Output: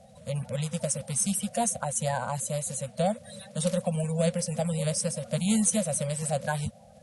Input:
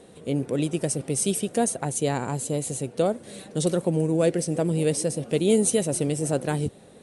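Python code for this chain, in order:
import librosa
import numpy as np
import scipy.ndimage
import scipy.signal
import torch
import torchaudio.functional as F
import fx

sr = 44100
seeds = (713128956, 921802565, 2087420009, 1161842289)

y = fx.spec_quant(x, sr, step_db=30)
y = scipy.signal.sosfilt(scipy.signal.ellip(3, 1.0, 40, [220.0, 530.0], 'bandstop', fs=sr, output='sos'), y)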